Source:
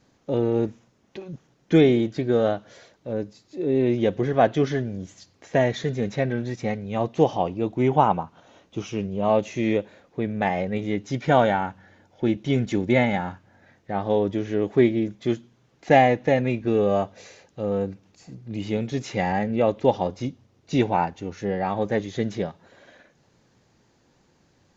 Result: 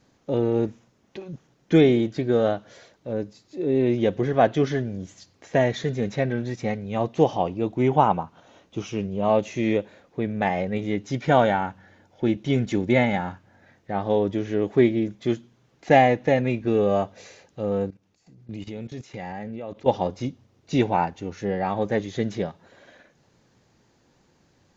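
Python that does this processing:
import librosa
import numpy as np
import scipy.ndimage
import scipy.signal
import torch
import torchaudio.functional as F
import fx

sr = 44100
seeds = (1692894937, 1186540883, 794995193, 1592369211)

y = fx.level_steps(x, sr, step_db=17, at=(17.88, 19.88))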